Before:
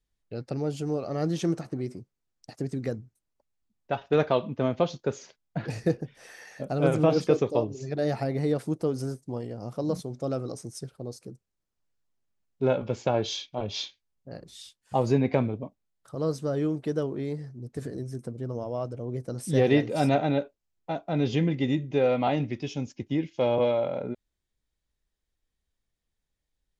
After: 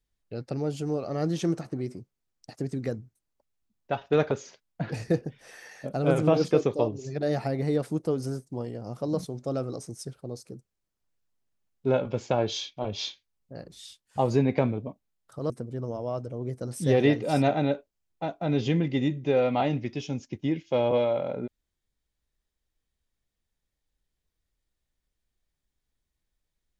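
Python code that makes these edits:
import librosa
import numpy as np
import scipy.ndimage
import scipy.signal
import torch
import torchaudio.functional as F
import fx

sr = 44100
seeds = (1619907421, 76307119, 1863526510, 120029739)

y = fx.edit(x, sr, fx.cut(start_s=4.31, length_s=0.76),
    fx.cut(start_s=16.26, length_s=1.91), tone=tone)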